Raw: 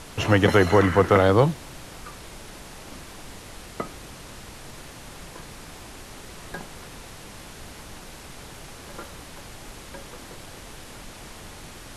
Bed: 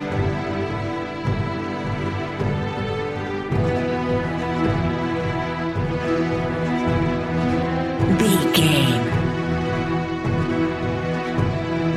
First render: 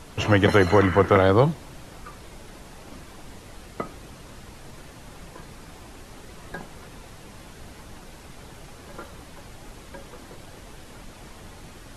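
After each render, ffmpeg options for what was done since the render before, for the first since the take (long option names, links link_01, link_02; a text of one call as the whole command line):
ffmpeg -i in.wav -af "afftdn=noise_reduction=6:noise_floor=-43" out.wav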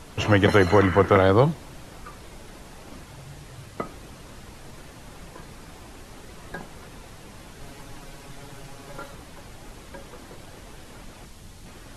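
ffmpeg -i in.wav -filter_complex "[0:a]asettb=1/sr,asplit=3[link_01][link_02][link_03];[link_01]atrim=end=3.054[link_04];[link_02]atrim=start=3.05:end=3.77,asetpts=PTS-STARTPTS,afade=type=in:duration=0.004:curve=qsin,afade=type=out:start_time=0.716:duration=0.004:curve=qsin,afreqshift=-150[link_05];[link_03]atrim=start=3.766[link_06];[link_04][link_05]acrossfade=duration=0.004:curve1=hsin:curve2=qsin[link_07];[link_07][link_06]acrossfade=duration=0.004:curve1=qsin:curve2=hsin,asettb=1/sr,asplit=3[link_08][link_09][link_10];[link_08]atrim=end=7.604[link_11];[link_09]atrim=start=7.6:end=9.15,asetpts=PTS-STARTPTS,afade=type=in:duration=0.004:curve=qsin,afade=type=out:start_time=1.546:duration=0.004:curve=qsin,aecho=1:1:7.2:0.65,atrim=end_sample=68355[link_12];[link_10]atrim=start=9.146[link_13];[link_11][link_12]acrossfade=duration=0.004:curve1=hsin:curve2=qsin[link_14];[link_14][link_13]acrossfade=duration=0.004:curve1=qsin:curve2=hsin,asettb=1/sr,asplit=3[link_15][link_16][link_17];[link_15]atrim=end=11.254[link_18];[link_16]atrim=start=11.25:end=11.66,asetpts=PTS-STARTPTS,afade=type=in:duration=0.004:curve=qsin,afade=type=out:start_time=0.406:duration=0.004:curve=qsin,acrossover=split=230|3000[link_19][link_20][link_21];[link_20]acompressor=threshold=-54dB:ratio=3:attack=3.2:release=140:knee=2.83:detection=peak[link_22];[link_19][link_22][link_21]amix=inputs=3:normalize=0[link_23];[link_17]atrim=start=11.656[link_24];[link_18][link_23]acrossfade=duration=0.004:curve1=hsin:curve2=qsin[link_25];[link_25][link_24]acrossfade=duration=0.004:curve1=qsin:curve2=hsin" out.wav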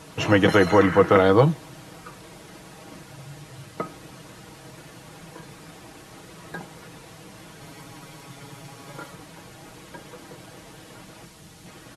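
ffmpeg -i in.wav -af "highpass=88,aecho=1:1:6.3:0.51" out.wav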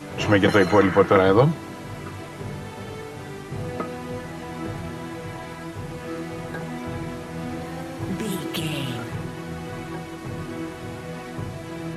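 ffmpeg -i in.wav -i bed.wav -filter_complex "[1:a]volume=-11dB[link_01];[0:a][link_01]amix=inputs=2:normalize=0" out.wav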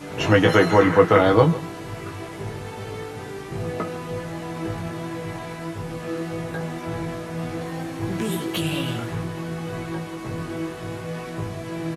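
ffmpeg -i in.wav -filter_complex "[0:a]asplit=2[link_01][link_02];[link_02]adelay=18,volume=-4.5dB[link_03];[link_01][link_03]amix=inputs=2:normalize=0,aecho=1:1:152:0.15" out.wav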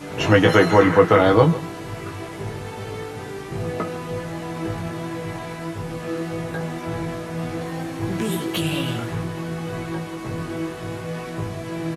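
ffmpeg -i in.wav -af "volume=1.5dB,alimiter=limit=-2dB:level=0:latency=1" out.wav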